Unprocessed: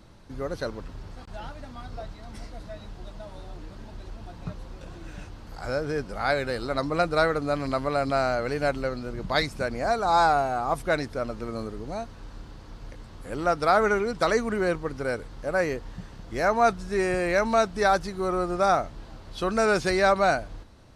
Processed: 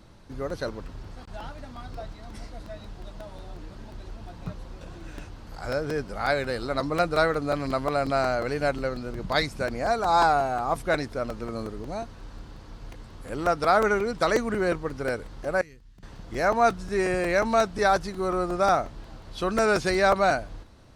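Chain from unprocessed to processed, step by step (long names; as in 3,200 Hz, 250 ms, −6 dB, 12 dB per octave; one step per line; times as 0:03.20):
0:15.61–0:16.03: guitar amp tone stack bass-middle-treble 6-0-2
regular buffer underruns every 0.18 s, samples 128, repeat, from 0:00.32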